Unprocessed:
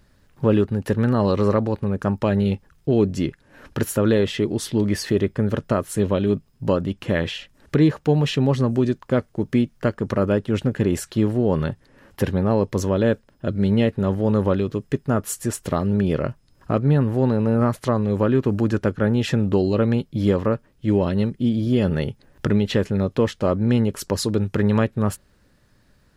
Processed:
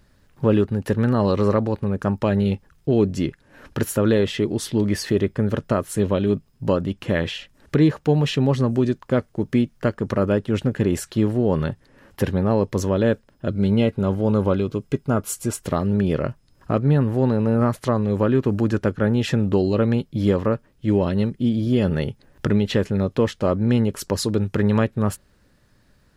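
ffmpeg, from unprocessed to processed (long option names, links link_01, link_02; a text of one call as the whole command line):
ffmpeg -i in.wav -filter_complex "[0:a]asettb=1/sr,asplit=3[link_01][link_02][link_03];[link_01]atrim=end=13.504[link_04];[link_02]atrim=start=13.5:end=15.61,asetpts=PTS-STARTPTS,afade=type=in:duration=0.004:curve=qsin,afade=type=out:start_time=2.106:duration=0.004:curve=qsin,asuperstop=centerf=1800:order=20:qfactor=7[link_05];[link_03]atrim=start=15.606[link_06];[link_04][link_05]acrossfade=duration=0.004:curve1=hsin:curve2=qsin[link_07];[link_07][link_06]acrossfade=duration=0.004:curve1=qsin:curve2=hsin" out.wav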